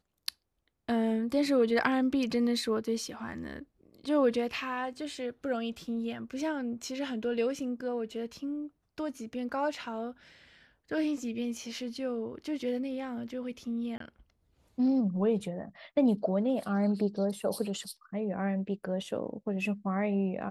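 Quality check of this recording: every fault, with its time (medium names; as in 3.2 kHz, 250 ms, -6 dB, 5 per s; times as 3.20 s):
13.98–14.00 s: dropout 23 ms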